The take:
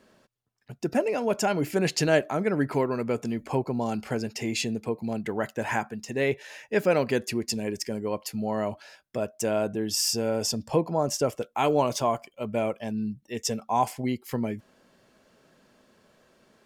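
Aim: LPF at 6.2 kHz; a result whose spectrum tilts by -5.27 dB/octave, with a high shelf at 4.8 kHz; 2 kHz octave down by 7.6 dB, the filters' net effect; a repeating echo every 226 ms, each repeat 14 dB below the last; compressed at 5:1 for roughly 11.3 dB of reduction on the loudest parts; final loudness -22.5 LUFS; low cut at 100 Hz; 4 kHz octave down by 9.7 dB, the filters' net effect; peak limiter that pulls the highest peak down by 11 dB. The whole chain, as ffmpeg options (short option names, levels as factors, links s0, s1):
-af "highpass=100,lowpass=6200,equalizer=f=2000:t=o:g=-7.5,equalizer=f=4000:t=o:g=-6,highshelf=f=4800:g=-6.5,acompressor=threshold=0.0282:ratio=5,alimiter=level_in=2:limit=0.0631:level=0:latency=1,volume=0.501,aecho=1:1:226|452:0.2|0.0399,volume=7.5"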